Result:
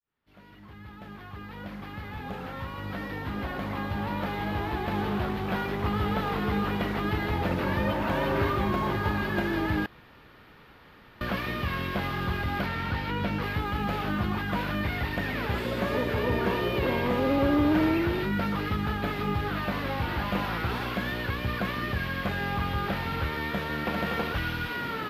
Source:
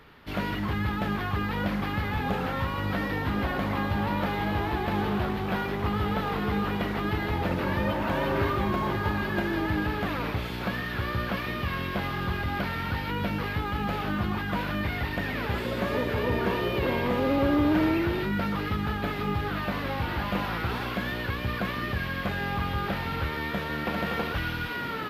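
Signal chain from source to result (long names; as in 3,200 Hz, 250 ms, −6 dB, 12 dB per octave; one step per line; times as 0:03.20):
fade in at the beginning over 6.04 s
0:09.86–0:11.21: fill with room tone
0:12.66–0:13.42: high-shelf EQ 11,000 Hz −11 dB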